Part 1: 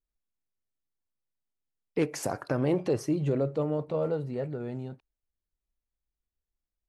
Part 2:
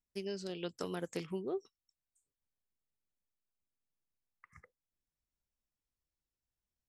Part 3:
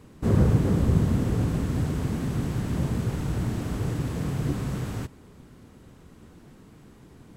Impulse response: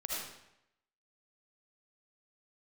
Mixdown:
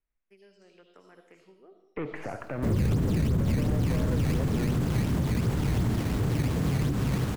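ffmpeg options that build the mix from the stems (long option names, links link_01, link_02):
-filter_complex "[0:a]lowpass=frequency=3400:poles=1,aeval=exprs='(tanh(22.4*val(0)+0.45)-tanh(0.45))/22.4':channel_layout=same,volume=2.5dB,asplit=2[link_01][link_02];[link_02]volume=-14.5dB[link_03];[1:a]lowshelf=frequency=250:gain=-11.5,adelay=150,volume=-16.5dB,asplit=2[link_04][link_05];[link_05]volume=-4dB[link_06];[2:a]dynaudnorm=framelen=170:gausssize=3:maxgain=7dB,acrusher=samples=12:mix=1:aa=0.000001:lfo=1:lforange=19.2:lforate=2.8,adelay=2400,volume=-4dB[link_07];[link_01][link_04]amix=inputs=2:normalize=0,lowpass=frequency=2200:width_type=q:width=2.3,alimiter=level_in=2dB:limit=-24dB:level=0:latency=1:release=72,volume=-2dB,volume=0dB[link_08];[3:a]atrim=start_sample=2205[link_09];[link_03][link_06]amix=inputs=2:normalize=0[link_10];[link_10][link_09]afir=irnorm=-1:irlink=0[link_11];[link_07][link_08][link_11]amix=inputs=3:normalize=0,acrossover=split=250[link_12][link_13];[link_13]acompressor=threshold=-30dB:ratio=3[link_14];[link_12][link_14]amix=inputs=2:normalize=0,alimiter=limit=-18.5dB:level=0:latency=1:release=22"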